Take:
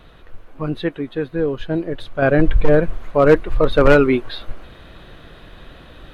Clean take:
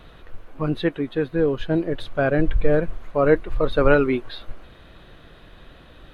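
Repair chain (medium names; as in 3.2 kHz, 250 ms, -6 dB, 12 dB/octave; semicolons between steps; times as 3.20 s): clip repair -4 dBFS; trim 0 dB, from 2.22 s -5.5 dB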